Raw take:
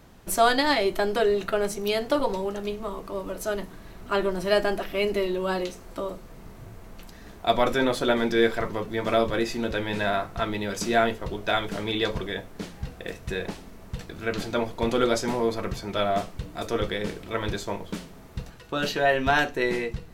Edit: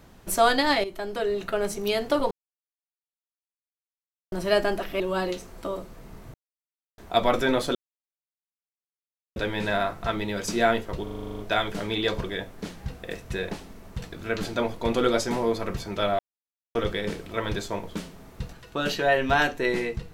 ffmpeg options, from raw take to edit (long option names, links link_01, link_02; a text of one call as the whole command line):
ffmpeg -i in.wav -filter_complex "[0:a]asplit=20[link_01][link_02][link_03][link_04][link_05][link_06][link_07][link_08][link_09][link_10][link_11][link_12][link_13][link_14][link_15][link_16][link_17][link_18][link_19][link_20];[link_01]atrim=end=0.84,asetpts=PTS-STARTPTS,afade=type=out:start_time=0.836:duration=0.004:curve=hsin:silence=0.251189[link_21];[link_02]atrim=start=0.84:end=2.31,asetpts=PTS-STARTPTS,afade=type=in:duration=0.92:silence=0.251189,afade=type=out:start_time=1.466:duration=0.004:curve=hsin[link_22];[link_03]atrim=start=2.31:end=4.32,asetpts=PTS-STARTPTS,volume=0[link_23];[link_04]atrim=start=4.32:end=5.002,asetpts=PTS-STARTPTS,afade=type=in:duration=0.004:curve=hsin[link_24];[link_05]atrim=start=5.328:end=6.67,asetpts=PTS-STARTPTS,afade=type=out:start_time=1.338:duration=0.004:curve=hsin[link_25];[link_06]atrim=start=6.67:end=7.31,asetpts=PTS-STARTPTS,volume=0[link_26];[link_07]atrim=start=7.31:end=8.08,asetpts=PTS-STARTPTS,afade=type=in:duration=0.004:curve=hsin,afade=type=out:start_time=0.766:duration=0.004:curve=hsin[link_27];[link_08]atrim=start=8.08:end=9.69,asetpts=PTS-STARTPTS,volume=0[link_28];[link_09]atrim=start=9.69:end=11.402,asetpts=PTS-STARTPTS,afade=type=in:duration=0.004:curve=hsin[link_29];[link_10]atrim=start=11.358:end=11.402[link_30];[link_11]atrim=start=11.358:end=11.402[link_31];[link_12]atrim=start=11.358:end=11.402[link_32];[link_13]atrim=start=11.358:end=11.402[link_33];[link_14]atrim=start=11.358:end=11.402[link_34];[link_15]atrim=start=11.358:end=11.402[link_35];[link_16]atrim=start=11.358:end=11.402[link_36];[link_17]atrim=start=11.358:end=11.402[link_37];[link_18]atrim=start=11.358:end=16.16,asetpts=PTS-STARTPTS,afade=type=out:start_time=4.798:duration=0.004:curve=hsin[link_38];[link_19]atrim=start=16.16:end=16.72,asetpts=PTS-STARTPTS,volume=0[link_39];[link_20]atrim=start=16.72,asetpts=PTS-STARTPTS,afade=type=in:duration=0.004:curve=hsin[link_40];[link_21][link_22][link_23][link_24]concat=n=4:v=0:a=1[link_41];[link_25][link_26][link_27][link_28][link_29]concat=n=5:v=0:a=1[link_42];[link_41][link_42]acrossfade=duration=0.004:curve1=hsin:curve2=hsin[link_43];[link_43][link_30]acrossfade=duration=0.004:curve1=hsin:curve2=hsin[link_44];[link_44][link_31]acrossfade=duration=0.004:curve1=hsin:curve2=hsin[link_45];[link_45][link_32]acrossfade=duration=0.004:curve1=hsin:curve2=hsin[link_46];[link_46][link_33]acrossfade=duration=0.004:curve1=hsin:curve2=hsin[link_47];[link_47][link_34]acrossfade=duration=0.004:curve1=hsin:curve2=hsin[link_48];[link_48][link_35]acrossfade=duration=0.004:curve1=hsin:curve2=hsin[link_49];[link_49][link_36]acrossfade=duration=0.004:curve1=hsin:curve2=hsin[link_50];[link_50][link_37]acrossfade=duration=0.004:curve1=hsin:curve2=hsin[link_51];[link_38][link_39][link_40]concat=n=3:v=0:a=1[link_52];[link_51][link_52]acrossfade=duration=0.004:curve1=hsin:curve2=hsin" out.wav